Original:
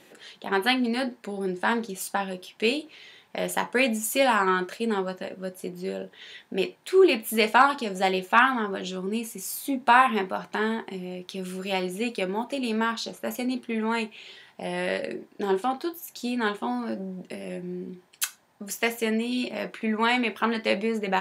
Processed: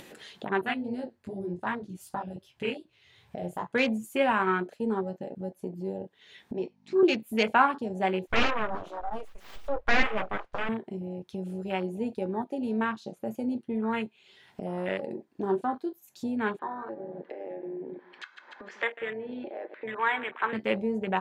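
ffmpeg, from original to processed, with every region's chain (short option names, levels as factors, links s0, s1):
-filter_complex "[0:a]asettb=1/sr,asplit=3[s0][s1][s2];[s0]atrim=end=0.614[s3];[s1]atrim=start=0.61:end=3.71,asetpts=PTS-STARTPTS,afade=t=in:d=0.004:c=qsin,afade=t=out:st=3.096:d=0.004:c=qsin,lowshelf=f=140:t=q:w=1.5:g=13,flanger=delay=15.5:depth=7.4:speed=2.6[s4];[s2]atrim=start=3.706[s5];[s3][s4]acrossfade=d=0.004:c1=hsin:c2=qsin[s6];[s6][s5]acrossfade=d=0.004:c1=qsin:c2=hsin,asettb=1/sr,asplit=3[s7][s8][s9];[s7]atrim=end=6.544[s10];[s8]atrim=start=6.54:end=7.03,asetpts=PTS-STARTPTS,afade=t=in:d=0.004:c=qsin,afade=t=out:st=0.486:d=0.004:c=qsin,aeval=exprs='val(0)+0.0178*(sin(2*PI*50*n/s)+sin(2*PI*2*50*n/s)/2+sin(2*PI*3*50*n/s)/3+sin(2*PI*4*50*n/s)/4+sin(2*PI*5*50*n/s)/5)':c=same,highpass=f=210:w=0.5412,highpass=f=210:w=1.3066,equalizer=f=300:t=q:w=4:g=-9,equalizer=f=550:t=q:w=4:g=-6,equalizer=f=890:t=q:w=4:g=5,equalizer=f=1500:t=q:w=4:g=-9,equalizer=f=3300:t=q:w=4:g=-5,equalizer=f=5600:t=q:w=4:g=4,lowpass=f=6400:w=0.5412,lowpass=f=6400:w=1.3066[s11];[s9]atrim=start=7.026[s12];[s10][s11]acrossfade=d=0.004:c1=hsin:c2=qsin[s13];[s13][s12]acrossfade=d=0.004:c1=qsin:c2=hsin,asettb=1/sr,asplit=3[s14][s15][s16];[s14]atrim=end=8.274[s17];[s15]atrim=start=8.27:end=10.69,asetpts=PTS-STARTPTS,afade=t=in:d=0.004:c=qsin,afade=t=out:st=2.416:d=0.004:c=qsin,flanger=delay=2.3:depth=3:regen=-15:speed=1.2:shape=triangular,aeval=exprs='abs(val(0))':c=same,asplit=2[s18][s19];[s19]highpass=f=720:p=1,volume=7.08,asoftclip=type=tanh:threshold=0.398[s20];[s18][s20]amix=inputs=2:normalize=0,lowpass=f=1700:p=1,volume=0.501[s21];[s16]atrim=start=10.686[s22];[s17][s21]acrossfade=d=0.004:c1=hsin:c2=qsin[s23];[s23][s22]acrossfade=d=0.004:c1=qsin:c2=hsin,asettb=1/sr,asplit=3[s24][s25][s26];[s24]atrim=end=16.594[s27];[s25]atrim=start=16.59:end=20.53,asetpts=PTS-STARTPTS,afade=t=in:d=0.004:c=qsin,afade=t=out:st=3.936:d=0.004:c=qsin,highpass=f=370:w=0.5412,highpass=f=370:w=1.3066,equalizer=f=410:t=q:w=4:g=-4,equalizer=f=680:t=q:w=4:g=-7,equalizer=f=980:t=q:w=4:g=3,equalizer=f=1700:t=q:w=4:g=6,equalizer=f=2800:t=q:w=4:g=-8,lowpass=f=3000:w=0.5412,lowpass=f=3000:w=1.3066,aecho=1:1:146|292|438:0.141|0.0523|0.0193,atrim=end_sample=173754,acompressor=mode=upward:threshold=0.0316:ratio=2.5:attack=3.2:release=140:knee=2.83:detection=peak[s28];[s26]atrim=start=20.526[s29];[s27][s28]acrossfade=d=0.004:c1=hsin:c2=qsin[s30];[s30][s29]acrossfade=d=0.004:c1=qsin:c2=hsin,afwtdn=0.0316,lowshelf=f=120:g=9.5,acompressor=mode=upward:threshold=0.0398:ratio=2.5,volume=0.668"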